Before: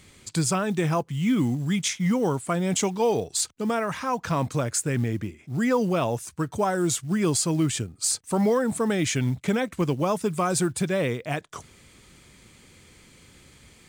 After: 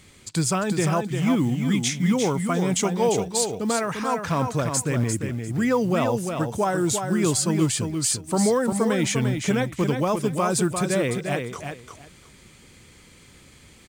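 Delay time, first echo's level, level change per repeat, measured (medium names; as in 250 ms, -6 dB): 348 ms, -6.0 dB, -14.5 dB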